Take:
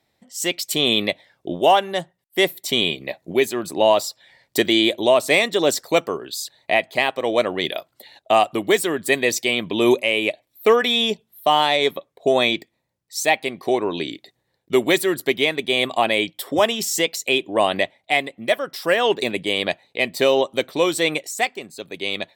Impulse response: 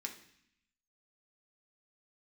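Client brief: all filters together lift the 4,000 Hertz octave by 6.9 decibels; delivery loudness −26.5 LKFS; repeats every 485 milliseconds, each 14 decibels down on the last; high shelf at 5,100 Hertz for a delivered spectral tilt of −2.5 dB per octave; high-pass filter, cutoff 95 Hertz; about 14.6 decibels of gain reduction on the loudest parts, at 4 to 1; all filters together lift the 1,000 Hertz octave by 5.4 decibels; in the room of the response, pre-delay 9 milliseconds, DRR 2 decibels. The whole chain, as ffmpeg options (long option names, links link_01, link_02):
-filter_complex "[0:a]highpass=95,equalizer=frequency=1000:width_type=o:gain=7,equalizer=frequency=4000:width_type=o:gain=5.5,highshelf=frequency=5100:gain=7.5,acompressor=threshold=-25dB:ratio=4,aecho=1:1:485|970:0.2|0.0399,asplit=2[link_01][link_02];[1:a]atrim=start_sample=2205,adelay=9[link_03];[link_02][link_03]afir=irnorm=-1:irlink=0,volume=-0.5dB[link_04];[link_01][link_04]amix=inputs=2:normalize=0,volume=-1dB"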